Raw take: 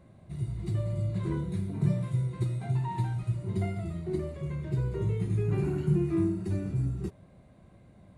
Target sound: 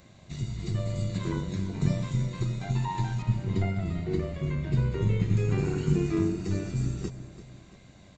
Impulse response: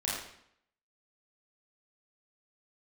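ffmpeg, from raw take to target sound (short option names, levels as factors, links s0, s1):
-filter_complex "[0:a]asettb=1/sr,asplit=3[s0][s1][s2];[s0]atrim=end=3.224[s3];[s1]atrim=start=3.22:end=5.37,asetpts=PTS-STARTPTS,afade=t=in:d=0.004:c=qsin,afade=t=out:st=2.146:d=0.004:c=qsin,bass=f=250:g=4,treble=f=4000:g=-13[s4];[s2]atrim=start=5.366[s5];[s3][s4]acrossfade=d=0.004:c1=hsin:c2=qsin[s6];[s6][s5]acrossfade=d=0.004:c1=qsin:c2=hsin,acrossover=split=1900[s7][s8];[s7]tremolo=f=95:d=0.621[s9];[s8]alimiter=level_in=26.6:limit=0.0631:level=0:latency=1:release=420,volume=0.0376[s10];[s9][s10]amix=inputs=2:normalize=0,aresample=16000,aresample=44100,asplit=2[s11][s12];[s12]aecho=0:1:340|680|1020|1360:0.2|0.0858|0.0369|0.0159[s13];[s11][s13]amix=inputs=2:normalize=0,crystalizer=i=7.5:c=0,volume=1.41"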